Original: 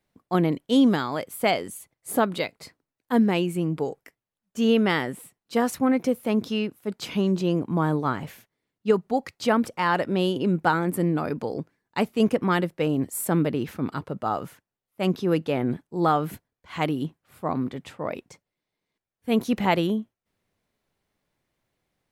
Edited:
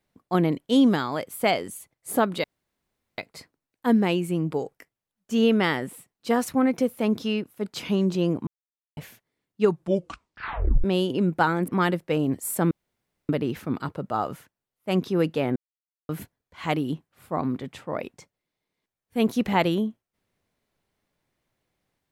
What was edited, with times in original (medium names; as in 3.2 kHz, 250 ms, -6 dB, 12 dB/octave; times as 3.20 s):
2.44 s: insert room tone 0.74 s
7.73–8.23 s: mute
8.88 s: tape stop 1.22 s
10.94–12.38 s: delete
13.41 s: insert room tone 0.58 s
15.68–16.21 s: mute